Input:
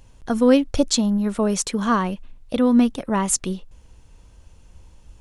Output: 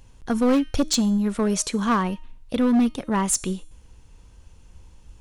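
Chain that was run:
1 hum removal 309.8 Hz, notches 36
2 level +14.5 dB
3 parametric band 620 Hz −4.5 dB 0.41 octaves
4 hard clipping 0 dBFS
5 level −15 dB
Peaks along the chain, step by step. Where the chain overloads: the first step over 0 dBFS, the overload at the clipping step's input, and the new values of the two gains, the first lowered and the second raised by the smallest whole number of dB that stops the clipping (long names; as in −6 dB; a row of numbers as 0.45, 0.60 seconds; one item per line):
−3.5, +11.0, +10.0, 0.0, −15.0 dBFS
step 2, 10.0 dB
step 2 +4.5 dB, step 5 −5 dB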